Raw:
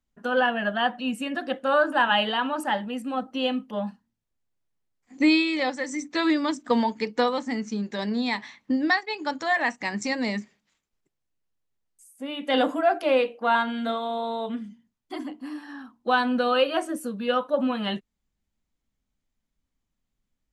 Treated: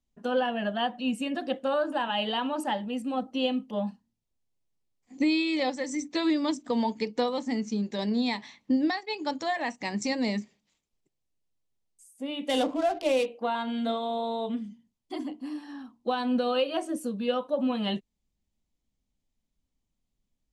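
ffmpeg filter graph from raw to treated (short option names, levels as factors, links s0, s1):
-filter_complex "[0:a]asettb=1/sr,asplit=3[s0][s1][s2];[s0]atrim=end=12.494[s3];[s1]atrim=start=12.49:end=13.26,asetpts=PTS-STARTPTS,afade=t=in:d=0.004:c=qsin,afade=t=out:st=0.766:d=0.004:c=qsin,highshelf=f=6000:g=11,adynamicsmooth=sensitivity=7.5:basefreq=820[s4];[s2]atrim=start=13.256[s5];[s3][s4]acrossfade=d=0.004:c1=hsin:c2=qsin[s6];[s6][s5]acrossfade=d=0.004:c1=qsin:c2=hsin,alimiter=limit=0.158:level=0:latency=1:release=205,lowpass=10000,equalizer=f=1500:t=o:w=1:g=-9.5"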